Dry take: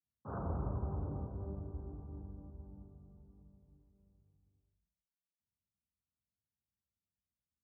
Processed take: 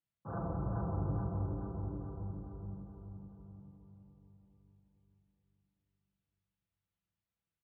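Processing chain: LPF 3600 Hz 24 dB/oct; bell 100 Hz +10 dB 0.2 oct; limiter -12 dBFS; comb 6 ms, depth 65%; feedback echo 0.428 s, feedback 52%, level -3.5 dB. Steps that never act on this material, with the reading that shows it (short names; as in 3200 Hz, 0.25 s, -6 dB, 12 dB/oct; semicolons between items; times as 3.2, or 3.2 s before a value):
LPF 3600 Hz: input band ends at 810 Hz; limiter -12 dBFS: input peak -24.5 dBFS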